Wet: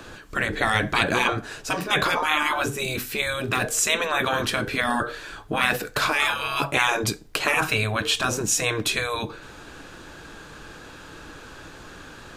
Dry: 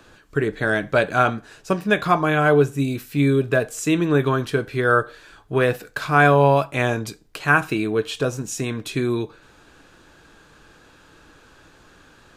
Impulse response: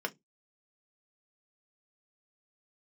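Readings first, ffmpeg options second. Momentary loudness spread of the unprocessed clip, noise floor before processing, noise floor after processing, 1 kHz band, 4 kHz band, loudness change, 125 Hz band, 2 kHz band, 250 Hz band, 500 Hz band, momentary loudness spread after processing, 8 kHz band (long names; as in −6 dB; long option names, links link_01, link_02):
11 LU, −52 dBFS, −44 dBFS, −3.0 dB, +8.5 dB, −3.0 dB, −9.0 dB, −0.5 dB, −8.5 dB, −8.5 dB, 21 LU, +8.5 dB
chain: -af "afftfilt=real='re*lt(hypot(re,im),0.224)':imag='im*lt(hypot(re,im),0.224)':win_size=1024:overlap=0.75,volume=8.5dB"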